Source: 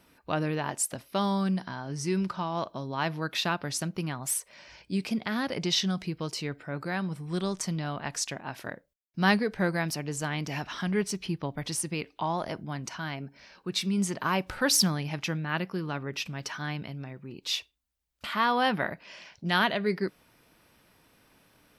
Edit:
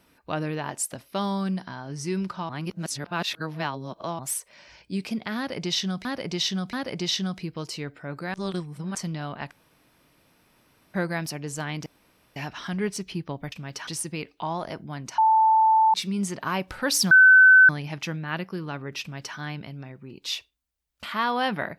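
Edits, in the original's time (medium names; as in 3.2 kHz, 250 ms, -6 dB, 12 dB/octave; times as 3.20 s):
2.49–4.19 s: reverse
5.37–6.05 s: loop, 3 plays
6.98–7.59 s: reverse
8.15–9.58 s: room tone
10.50 s: insert room tone 0.50 s
12.97–13.73 s: bleep 882 Hz -15 dBFS
14.90 s: add tone 1.52 kHz -9.5 dBFS 0.58 s
16.22–16.57 s: copy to 11.66 s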